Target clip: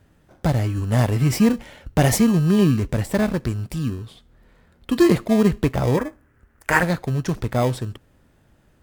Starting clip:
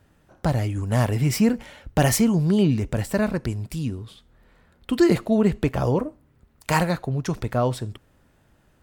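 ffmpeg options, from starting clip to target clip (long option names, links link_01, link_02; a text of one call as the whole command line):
ffmpeg -i in.wav -filter_complex "[0:a]asplit=2[link_01][link_02];[link_02]acrusher=samples=31:mix=1:aa=0.000001,volume=-8dB[link_03];[link_01][link_03]amix=inputs=2:normalize=0,asettb=1/sr,asplit=3[link_04][link_05][link_06];[link_04]atrim=end=5.974[link_07];[link_05]atrim=start=5.97:end=6.83,asetpts=PTS-STARTPTS,afade=type=in:duration=0.004:curve=qsin,afade=type=out:start_time=0.856:duration=0.004:curve=qsin,equalizer=frequency=160:width_type=o:width=0.67:gain=-9,equalizer=frequency=1600:width_type=o:width=0.67:gain=12,equalizer=frequency=4000:width_type=o:width=0.67:gain=-9[link_08];[link_06]atrim=start=6.826[link_09];[link_07][link_08]acrossfade=duration=0.004:curve1=hsin:curve2=qsin[link_10];[link_10][link_09]acrossfade=duration=0.004:curve1=qsin:curve2=hsin" out.wav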